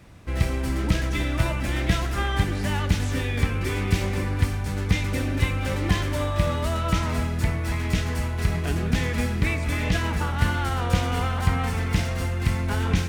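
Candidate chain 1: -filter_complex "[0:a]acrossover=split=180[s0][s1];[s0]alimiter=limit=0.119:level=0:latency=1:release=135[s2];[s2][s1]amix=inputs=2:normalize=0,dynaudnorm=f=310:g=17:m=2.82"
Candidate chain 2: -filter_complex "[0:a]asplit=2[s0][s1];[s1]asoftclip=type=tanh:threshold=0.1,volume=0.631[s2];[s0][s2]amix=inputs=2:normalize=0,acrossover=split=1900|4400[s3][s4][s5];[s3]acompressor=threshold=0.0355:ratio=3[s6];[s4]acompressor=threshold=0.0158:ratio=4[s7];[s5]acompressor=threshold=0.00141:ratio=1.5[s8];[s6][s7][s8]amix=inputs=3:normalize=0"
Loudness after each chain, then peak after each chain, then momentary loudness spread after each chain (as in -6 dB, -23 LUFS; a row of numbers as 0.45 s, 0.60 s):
-20.5 LUFS, -29.5 LUFS; -3.0 dBFS, -15.0 dBFS; 8 LU, 1 LU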